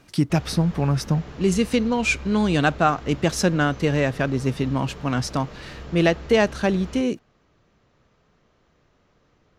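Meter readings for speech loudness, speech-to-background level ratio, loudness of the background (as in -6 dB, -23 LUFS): -22.5 LUFS, 17.0 dB, -39.5 LUFS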